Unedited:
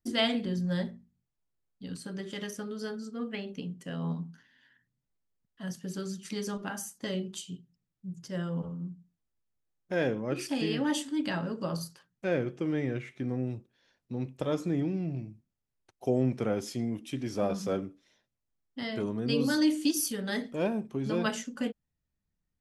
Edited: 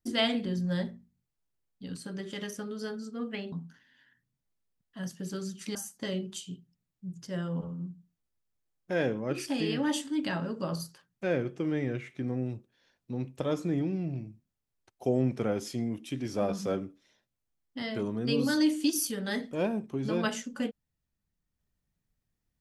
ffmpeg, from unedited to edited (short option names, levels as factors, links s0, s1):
-filter_complex "[0:a]asplit=3[s0][s1][s2];[s0]atrim=end=3.522[s3];[s1]atrim=start=4.158:end=6.392[s4];[s2]atrim=start=6.758[s5];[s3][s4]acrossfade=d=0.004:c1=hsin:c2=hsin[s6];[s6][s5]acrossfade=d=0.004:c1=hsin:c2=hsin"